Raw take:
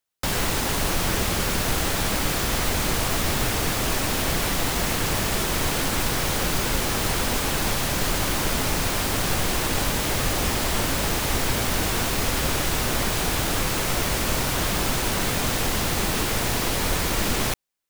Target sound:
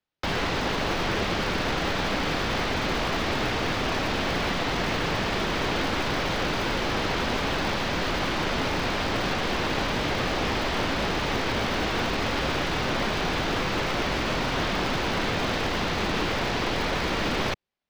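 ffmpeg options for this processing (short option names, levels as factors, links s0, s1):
-filter_complex "[0:a]lowpass=7300,acrossover=split=170|970|5200[s0][s1][s2][s3];[s0]asoftclip=type=hard:threshold=0.0237[s4];[s3]acrusher=samples=31:mix=1:aa=0.000001[s5];[s4][s1][s2][s5]amix=inputs=4:normalize=0"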